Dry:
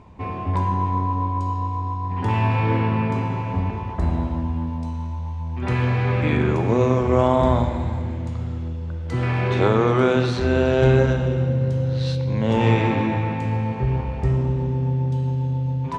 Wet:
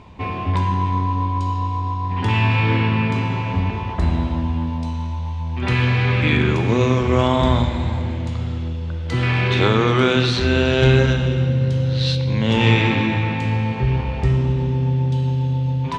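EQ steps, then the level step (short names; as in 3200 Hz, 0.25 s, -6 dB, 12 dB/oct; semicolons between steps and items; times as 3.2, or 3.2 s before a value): dynamic EQ 650 Hz, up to -6 dB, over -32 dBFS, Q 1; bell 3400 Hz +9 dB 1.5 oct; +3.0 dB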